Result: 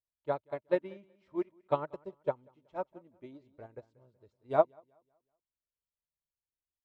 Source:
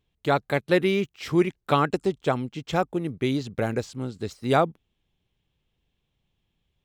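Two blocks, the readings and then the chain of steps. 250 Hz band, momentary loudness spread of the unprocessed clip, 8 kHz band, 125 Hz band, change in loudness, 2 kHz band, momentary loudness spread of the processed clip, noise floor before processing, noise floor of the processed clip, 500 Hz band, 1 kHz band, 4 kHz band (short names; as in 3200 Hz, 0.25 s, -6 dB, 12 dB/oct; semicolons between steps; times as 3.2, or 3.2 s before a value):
-16.5 dB, 8 LU, under -30 dB, -20.0 dB, -9.0 dB, -19.0 dB, 23 LU, -77 dBFS, under -85 dBFS, -8.0 dB, -11.0 dB, under -25 dB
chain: LPF 1400 Hz 6 dB/oct; small resonant body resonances 610/940 Hz, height 14 dB, ringing for 40 ms; flange 0.49 Hz, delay 1.8 ms, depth 1.9 ms, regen -38%; on a send: feedback echo 0.187 s, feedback 40%, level -13 dB; on the sum: upward expander 2.5:1, over -30 dBFS; gain -4 dB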